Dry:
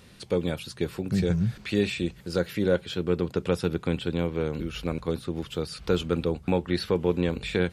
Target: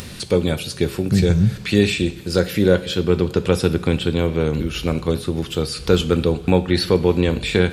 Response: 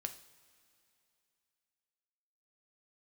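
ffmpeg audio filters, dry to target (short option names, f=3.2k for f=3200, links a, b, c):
-filter_complex "[0:a]lowshelf=f=340:g=4,acompressor=mode=upward:threshold=-34dB:ratio=2.5,asplit=2[a][b];[1:a]atrim=start_sample=2205,highshelf=f=2.6k:g=8.5[c];[b][c]afir=irnorm=-1:irlink=0,volume=6.5dB[d];[a][d]amix=inputs=2:normalize=0,volume=-2dB"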